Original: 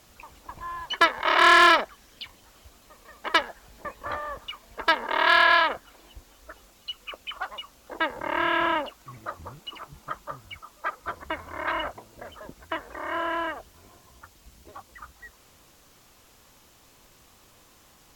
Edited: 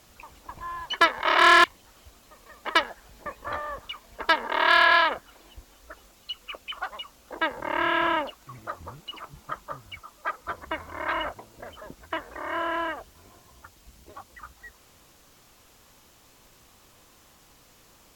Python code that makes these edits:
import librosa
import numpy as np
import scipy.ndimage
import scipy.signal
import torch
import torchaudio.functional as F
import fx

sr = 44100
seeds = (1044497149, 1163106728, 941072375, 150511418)

y = fx.edit(x, sr, fx.cut(start_s=1.64, length_s=0.59), tone=tone)